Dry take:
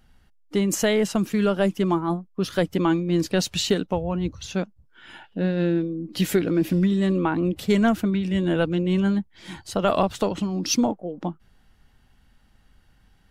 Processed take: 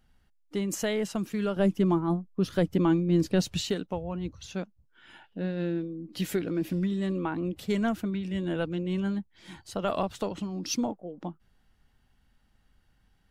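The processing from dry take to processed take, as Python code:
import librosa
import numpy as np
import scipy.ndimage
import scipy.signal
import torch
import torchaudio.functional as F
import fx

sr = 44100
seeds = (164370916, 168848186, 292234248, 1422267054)

y = fx.low_shelf(x, sr, hz=460.0, db=8.5, at=(1.56, 3.61))
y = y * 10.0 ** (-8.0 / 20.0)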